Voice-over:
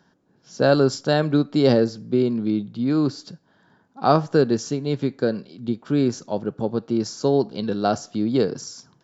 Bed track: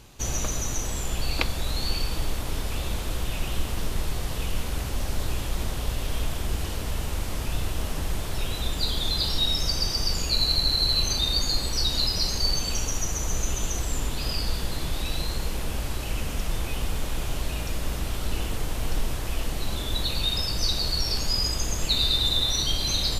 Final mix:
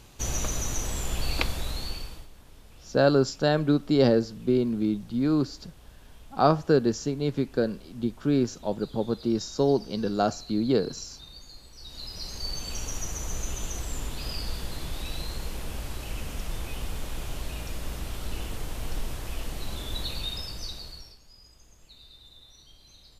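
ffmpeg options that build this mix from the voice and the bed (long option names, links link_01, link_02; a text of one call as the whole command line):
ffmpeg -i stem1.wav -i stem2.wav -filter_complex "[0:a]adelay=2350,volume=-3.5dB[link_01];[1:a]volume=15.5dB,afade=type=out:start_time=1.45:duration=0.83:silence=0.0891251,afade=type=in:start_time=11.78:duration=1.16:silence=0.141254,afade=type=out:start_time=20.04:duration=1.13:silence=0.0668344[link_02];[link_01][link_02]amix=inputs=2:normalize=0" out.wav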